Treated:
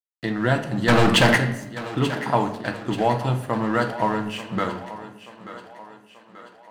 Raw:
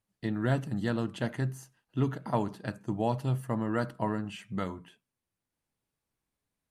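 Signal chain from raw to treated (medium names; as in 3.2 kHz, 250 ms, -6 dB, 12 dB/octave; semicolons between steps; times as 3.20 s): recorder AGC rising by 7.4 dB/s; 0.88–1.38 s: waveshaping leveller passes 5; crossover distortion -50.5 dBFS; overdrive pedal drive 9 dB, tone 4.5 kHz, clips at -11.5 dBFS; thinning echo 884 ms, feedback 54%, high-pass 210 Hz, level -14 dB; on a send at -6.5 dB: reverberation RT60 0.90 s, pre-delay 3 ms; on the sum: trim +7.5 dB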